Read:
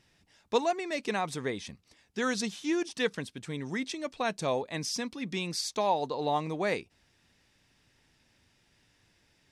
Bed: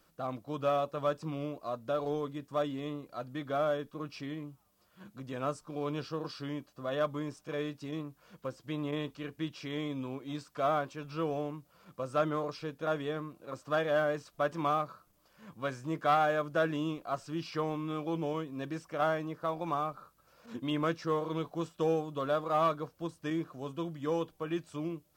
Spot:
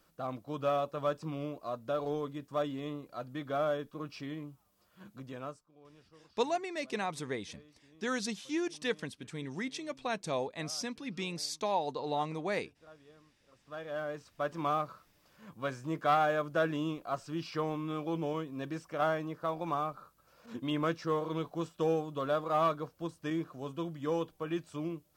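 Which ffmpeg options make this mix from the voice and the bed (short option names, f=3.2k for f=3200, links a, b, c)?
-filter_complex "[0:a]adelay=5850,volume=-4dB[a];[1:a]volume=22dB,afade=t=out:st=5.15:d=0.52:silence=0.0749894,afade=t=in:st=13.53:d=1.32:silence=0.0707946[b];[a][b]amix=inputs=2:normalize=0"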